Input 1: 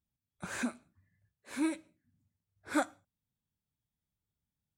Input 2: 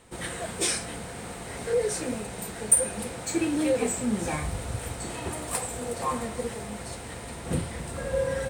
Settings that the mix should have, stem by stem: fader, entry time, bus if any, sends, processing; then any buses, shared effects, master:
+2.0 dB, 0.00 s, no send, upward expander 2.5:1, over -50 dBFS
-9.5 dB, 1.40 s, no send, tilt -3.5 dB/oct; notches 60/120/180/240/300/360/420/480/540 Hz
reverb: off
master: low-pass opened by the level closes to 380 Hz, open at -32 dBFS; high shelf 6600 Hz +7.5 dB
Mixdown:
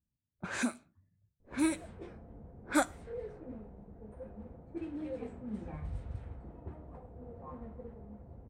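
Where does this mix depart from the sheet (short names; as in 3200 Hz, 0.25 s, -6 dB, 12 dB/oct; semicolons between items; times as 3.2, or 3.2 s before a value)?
stem 1: missing upward expander 2.5:1, over -50 dBFS; stem 2 -9.5 dB -> -19.0 dB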